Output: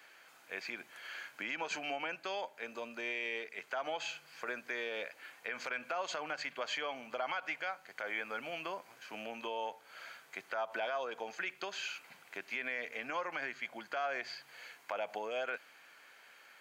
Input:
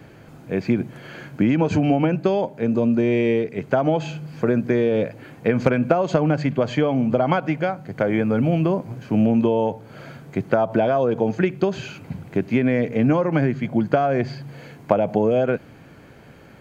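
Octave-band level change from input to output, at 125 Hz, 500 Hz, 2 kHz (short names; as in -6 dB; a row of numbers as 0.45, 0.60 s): under -40 dB, -21.5 dB, -6.5 dB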